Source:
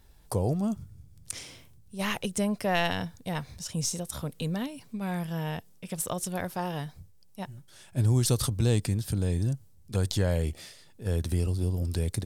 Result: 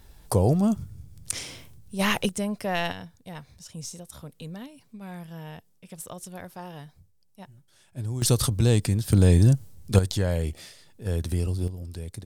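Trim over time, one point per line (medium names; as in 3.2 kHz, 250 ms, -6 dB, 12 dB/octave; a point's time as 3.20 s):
+6.5 dB
from 2.29 s -1 dB
from 2.92 s -7.5 dB
from 8.22 s +4 dB
from 9.13 s +10.5 dB
from 9.99 s +1 dB
from 11.68 s -7.5 dB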